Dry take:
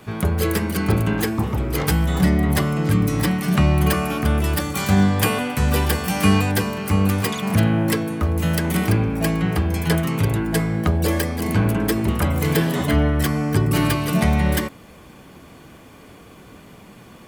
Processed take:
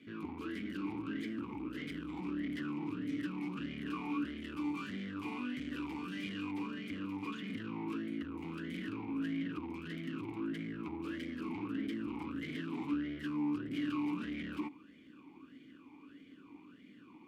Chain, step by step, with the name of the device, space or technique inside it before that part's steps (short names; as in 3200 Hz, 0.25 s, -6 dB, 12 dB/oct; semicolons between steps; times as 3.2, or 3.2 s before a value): talk box (tube stage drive 29 dB, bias 0.8; vowel sweep i-u 1.6 Hz); gain +3.5 dB